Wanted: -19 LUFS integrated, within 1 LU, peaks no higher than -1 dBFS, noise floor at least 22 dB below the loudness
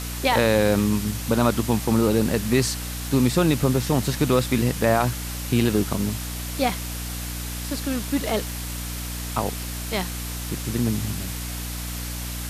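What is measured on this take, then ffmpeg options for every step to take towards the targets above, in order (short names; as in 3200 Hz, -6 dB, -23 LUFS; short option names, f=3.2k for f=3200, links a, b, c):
hum 60 Hz; harmonics up to 300 Hz; hum level -30 dBFS; noise floor -31 dBFS; noise floor target -46 dBFS; loudness -24.0 LUFS; peak -7.0 dBFS; loudness target -19.0 LUFS
-> -af "bandreject=f=60:t=h:w=4,bandreject=f=120:t=h:w=4,bandreject=f=180:t=h:w=4,bandreject=f=240:t=h:w=4,bandreject=f=300:t=h:w=4"
-af "afftdn=nr=15:nf=-31"
-af "volume=5dB"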